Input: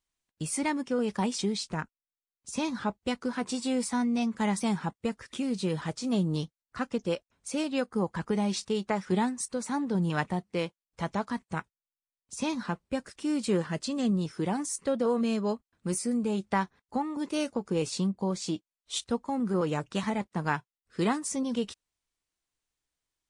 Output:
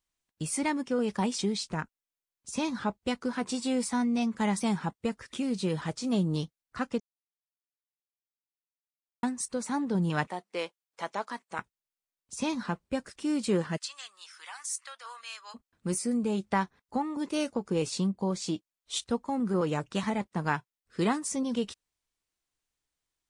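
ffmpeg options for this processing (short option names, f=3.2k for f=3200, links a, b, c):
-filter_complex "[0:a]asettb=1/sr,asplit=3[a][b][c];[a]atrim=end=10.274[d];[b]atrim=start=10.27:end=11.59,asetpts=PTS-STARTPTS,afade=t=in:d=0.004:c=qsin,afade=t=out:st=1.316:d=0.004:c=qsin,highpass=450[e];[c]atrim=start=11.586[f];[d][e]acrossfade=d=0.004:c1=hsin:c2=qsin[g];[g][f]acrossfade=d=0.004:c1=qsin:c2=hsin,asplit=3[h][i][j];[h]afade=t=out:st=13.76:d=0.02[k];[i]highpass=f=1.2k:w=0.5412,highpass=f=1.2k:w=1.3066,afade=t=in:st=13.76:d=0.02,afade=t=out:st=15.54:d=0.02[l];[j]afade=t=in:st=15.54:d=0.02[m];[k][l][m]amix=inputs=3:normalize=0,asplit=3[n][o][p];[n]atrim=end=7,asetpts=PTS-STARTPTS,afade=t=out:st=6.996:d=0.004:c=hsin[q];[o]atrim=start=7:end=9.23,asetpts=PTS-STARTPTS,volume=0[r];[p]atrim=start=9.23,asetpts=PTS-STARTPTS,afade=t=in:d=0.004:c=hsin[s];[q][r][s]concat=n=3:v=0:a=1"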